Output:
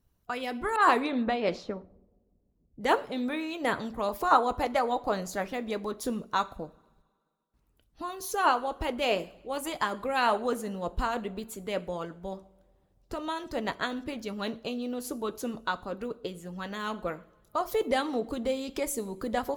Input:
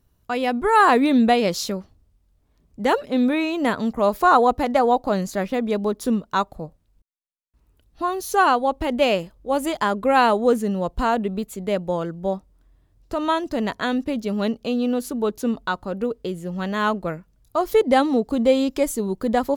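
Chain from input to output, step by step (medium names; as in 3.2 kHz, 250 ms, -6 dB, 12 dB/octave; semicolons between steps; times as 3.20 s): two-slope reverb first 0.47 s, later 2 s, from -21 dB, DRR 8.5 dB; harmonic-percussive split harmonic -10 dB; 0.76–2.81 s: level-controlled noise filter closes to 440 Hz, open at -15.5 dBFS; trim -3.5 dB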